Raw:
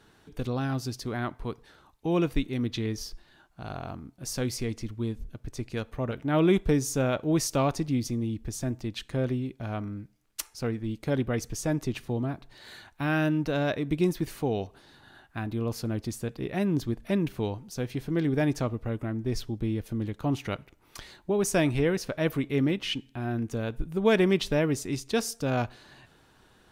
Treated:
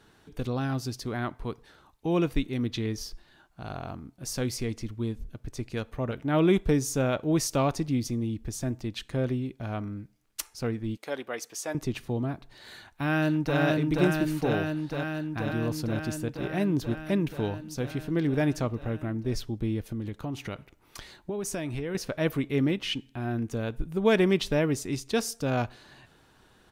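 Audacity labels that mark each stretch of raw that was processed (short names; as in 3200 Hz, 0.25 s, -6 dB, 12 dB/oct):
10.970000	11.750000	HPF 550 Hz
12.740000	13.590000	echo throw 0.48 s, feedback 80%, level -1.5 dB
19.920000	21.950000	compressor, threshold -29 dBFS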